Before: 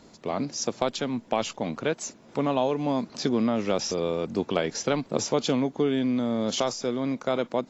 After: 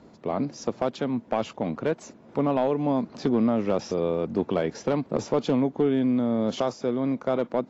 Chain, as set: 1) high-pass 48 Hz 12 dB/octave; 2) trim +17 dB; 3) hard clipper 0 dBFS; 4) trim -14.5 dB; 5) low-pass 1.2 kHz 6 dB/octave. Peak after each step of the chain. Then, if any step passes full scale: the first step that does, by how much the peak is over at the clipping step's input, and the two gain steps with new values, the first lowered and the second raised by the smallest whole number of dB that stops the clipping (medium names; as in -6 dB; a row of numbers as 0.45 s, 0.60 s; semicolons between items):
-9.0 dBFS, +8.0 dBFS, 0.0 dBFS, -14.5 dBFS, -14.5 dBFS; step 2, 8.0 dB; step 2 +9 dB, step 4 -6.5 dB